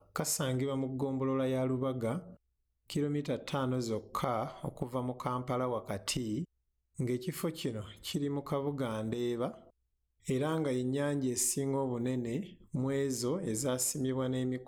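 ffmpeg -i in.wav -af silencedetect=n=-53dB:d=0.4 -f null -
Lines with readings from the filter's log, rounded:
silence_start: 2.35
silence_end: 2.88 | silence_duration: 0.53
silence_start: 6.45
silence_end: 6.97 | silence_duration: 0.52
silence_start: 9.70
silence_end: 10.25 | silence_duration: 0.55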